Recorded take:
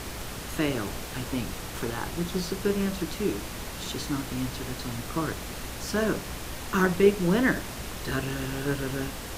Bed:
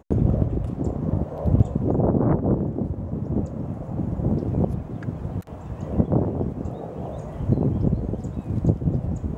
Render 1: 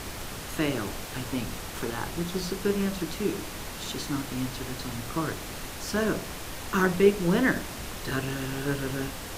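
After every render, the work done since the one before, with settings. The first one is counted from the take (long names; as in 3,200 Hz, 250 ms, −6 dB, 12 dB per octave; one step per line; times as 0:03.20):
hum removal 60 Hz, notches 11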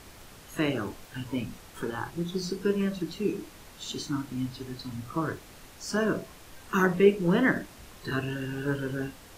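noise reduction from a noise print 12 dB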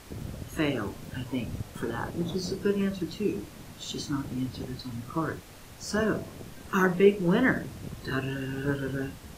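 mix in bed −18.5 dB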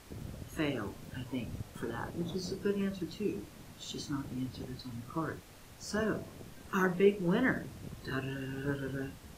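level −6 dB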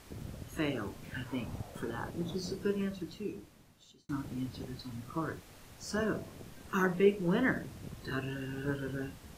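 0:01.03–0:01.79: parametric band 2,400 Hz → 530 Hz +10.5 dB
0:02.70–0:04.09: fade out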